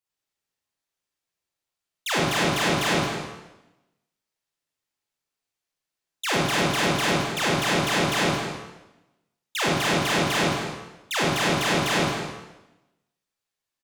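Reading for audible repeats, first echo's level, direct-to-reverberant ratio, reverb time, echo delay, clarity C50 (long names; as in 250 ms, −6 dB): 1, −10.5 dB, −6.5 dB, 1.0 s, 216 ms, −2.0 dB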